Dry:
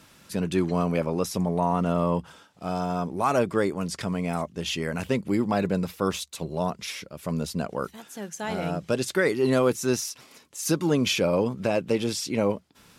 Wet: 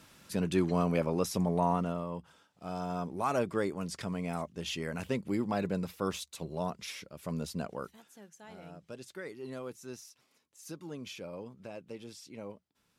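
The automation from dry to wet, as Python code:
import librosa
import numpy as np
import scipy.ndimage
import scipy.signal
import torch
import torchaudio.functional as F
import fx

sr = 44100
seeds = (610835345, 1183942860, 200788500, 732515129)

y = fx.gain(x, sr, db=fx.line((1.71, -4.0), (2.07, -14.5), (2.95, -7.5), (7.67, -7.5), (8.4, -20.0)))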